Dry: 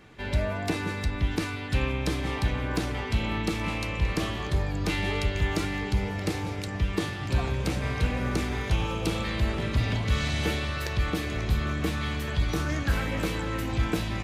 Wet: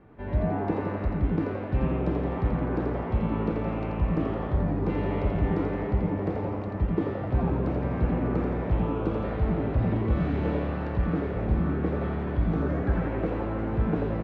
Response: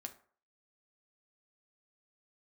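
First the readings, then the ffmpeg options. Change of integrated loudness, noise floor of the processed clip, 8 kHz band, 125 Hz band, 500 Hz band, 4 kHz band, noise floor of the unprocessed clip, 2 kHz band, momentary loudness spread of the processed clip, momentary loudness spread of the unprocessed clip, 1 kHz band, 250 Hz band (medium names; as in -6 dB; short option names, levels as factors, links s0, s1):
+1.0 dB, -32 dBFS, under -30 dB, +1.0 dB, +4.0 dB, under -15 dB, -34 dBFS, -9.0 dB, 3 LU, 3 LU, +0.5 dB, +3.5 dB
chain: -filter_complex "[0:a]lowpass=1000,asplit=9[s0][s1][s2][s3][s4][s5][s6][s7][s8];[s1]adelay=85,afreqshift=110,volume=0.562[s9];[s2]adelay=170,afreqshift=220,volume=0.327[s10];[s3]adelay=255,afreqshift=330,volume=0.188[s11];[s4]adelay=340,afreqshift=440,volume=0.11[s12];[s5]adelay=425,afreqshift=550,volume=0.0638[s13];[s6]adelay=510,afreqshift=660,volume=0.0367[s14];[s7]adelay=595,afreqshift=770,volume=0.0214[s15];[s8]adelay=680,afreqshift=880,volume=0.0124[s16];[s0][s9][s10][s11][s12][s13][s14][s15][s16]amix=inputs=9:normalize=0"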